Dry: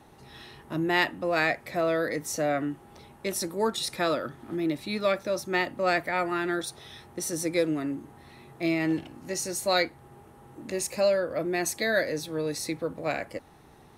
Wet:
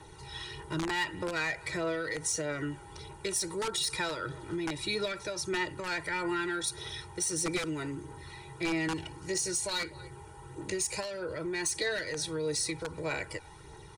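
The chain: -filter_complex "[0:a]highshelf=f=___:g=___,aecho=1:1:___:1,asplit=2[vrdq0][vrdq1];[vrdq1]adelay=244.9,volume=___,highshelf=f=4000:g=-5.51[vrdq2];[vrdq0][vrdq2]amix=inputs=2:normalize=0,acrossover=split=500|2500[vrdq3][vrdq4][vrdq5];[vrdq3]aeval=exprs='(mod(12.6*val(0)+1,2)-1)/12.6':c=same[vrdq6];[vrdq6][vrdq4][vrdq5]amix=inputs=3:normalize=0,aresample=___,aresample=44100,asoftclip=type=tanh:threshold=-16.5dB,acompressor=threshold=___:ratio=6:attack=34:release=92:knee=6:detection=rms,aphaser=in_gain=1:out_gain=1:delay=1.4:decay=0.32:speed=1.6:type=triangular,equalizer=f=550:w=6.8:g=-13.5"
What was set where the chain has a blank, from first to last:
5000, 7.5, 2.1, -30dB, 22050, -31dB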